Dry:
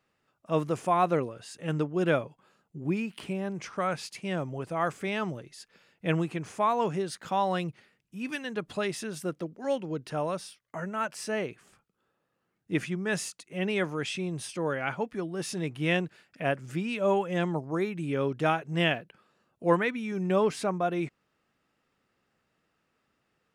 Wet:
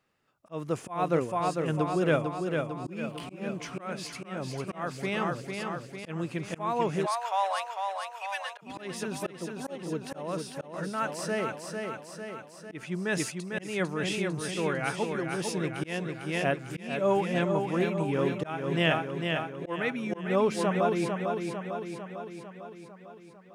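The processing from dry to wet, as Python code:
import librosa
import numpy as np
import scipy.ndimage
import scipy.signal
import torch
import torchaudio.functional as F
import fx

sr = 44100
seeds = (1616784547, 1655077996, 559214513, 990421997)

y = fx.echo_feedback(x, sr, ms=450, feedback_pct=60, wet_db=-5)
y = fx.auto_swell(y, sr, attack_ms=246.0)
y = fx.steep_highpass(y, sr, hz=580.0, slope=48, at=(7.05, 8.61), fade=0.02)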